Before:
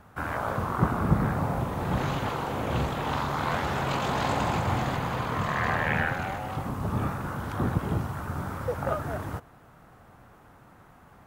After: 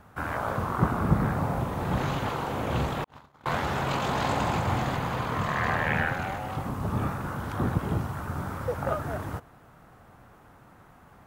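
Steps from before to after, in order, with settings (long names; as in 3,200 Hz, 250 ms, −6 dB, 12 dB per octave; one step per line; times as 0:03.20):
0:03.04–0:03.46: noise gate −24 dBFS, range −53 dB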